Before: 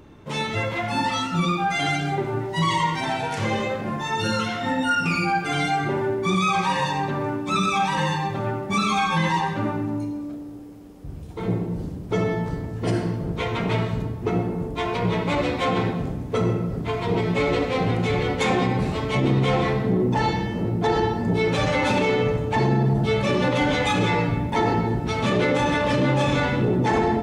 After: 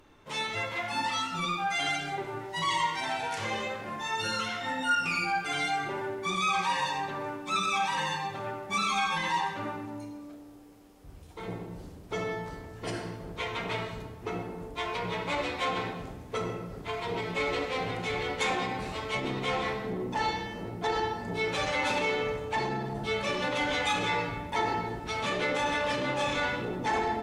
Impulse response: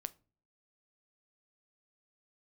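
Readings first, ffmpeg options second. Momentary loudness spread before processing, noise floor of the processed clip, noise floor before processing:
7 LU, -47 dBFS, -34 dBFS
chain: -filter_complex "[0:a]equalizer=f=140:w=0.33:g=-13.5[a];[1:a]atrim=start_sample=2205,asetrate=29547,aresample=44100[b];[a][b]afir=irnorm=-1:irlink=0,volume=-2.5dB"

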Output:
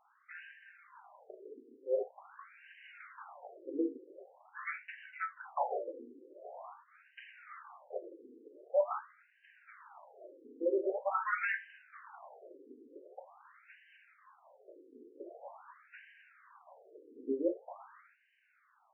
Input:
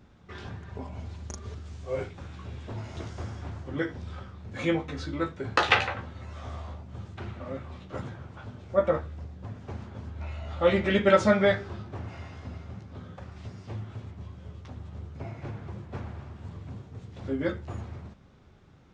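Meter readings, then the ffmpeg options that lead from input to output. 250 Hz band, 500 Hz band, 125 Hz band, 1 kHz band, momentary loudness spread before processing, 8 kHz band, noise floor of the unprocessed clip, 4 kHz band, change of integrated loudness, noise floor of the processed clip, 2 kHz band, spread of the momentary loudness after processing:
-11.5 dB, -9.0 dB, under -40 dB, -7.5 dB, 19 LU, n/a, -55 dBFS, under -25 dB, -7.5 dB, -71 dBFS, -10.0 dB, 22 LU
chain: -af "volume=22.5dB,asoftclip=hard,volume=-22.5dB,afftfilt=real='re*between(b*sr/1024,350*pow(2200/350,0.5+0.5*sin(2*PI*0.45*pts/sr))/1.41,350*pow(2200/350,0.5+0.5*sin(2*PI*0.45*pts/sr))*1.41)':imag='im*between(b*sr/1024,350*pow(2200/350,0.5+0.5*sin(2*PI*0.45*pts/sr))/1.41,350*pow(2200/350,0.5+0.5*sin(2*PI*0.45*pts/sr))*1.41)':win_size=1024:overlap=0.75"

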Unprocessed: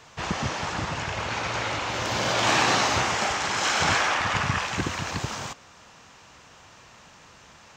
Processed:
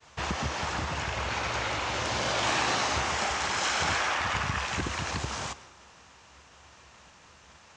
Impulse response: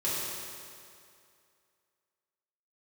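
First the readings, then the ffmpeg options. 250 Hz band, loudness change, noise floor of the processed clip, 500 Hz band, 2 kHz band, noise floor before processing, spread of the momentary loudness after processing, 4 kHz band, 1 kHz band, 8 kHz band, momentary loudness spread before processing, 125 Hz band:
-5.0 dB, -4.0 dB, -56 dBFS, -4.0 dB, -4.0 dB, -52 dBFS, 6 LU, -4.0 dB, -4.0 dB, -4.0 dB, 10 LU, -4.0 dB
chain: -filter_complex "[0:a]agate=range=-33dB:threshold=-46dB:ratio=3:detection=peak,equalizer=f=68:t=o:w=0.41:g=14,asplit=2[a][b];[1:a]atrim=start_sample=2205[c];[b][c]afir=irnorm=-1:irlink=0,volume=-28dB[d];[a][d]amix=inputs=2:normalize=0,acompressor=threshold=-28dB:ratio=2,aresample=22050,aresample=44100,lowshelf=f=230:g=-4"

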